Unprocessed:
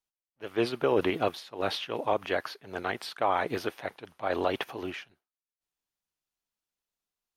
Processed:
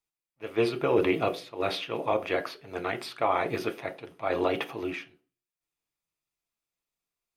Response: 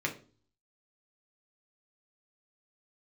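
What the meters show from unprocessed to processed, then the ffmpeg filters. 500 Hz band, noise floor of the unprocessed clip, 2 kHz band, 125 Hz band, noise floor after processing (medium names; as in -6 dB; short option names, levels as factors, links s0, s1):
+2.0 dB, under -85 dBFS, +1.0 dB, +2.5 dB, under -85 dBFS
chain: -filter_complex "[0:a]asplit=2[s0][s1];[1:a]atrim=start_sample=2205,asetrate=52920,aresample=44100[s2];[s1][s2]afir=irnorm=-1:irlink=0,volume=0.596[s3];[s0][s3]amix=inputs=2:normalize=0,volume=0.708"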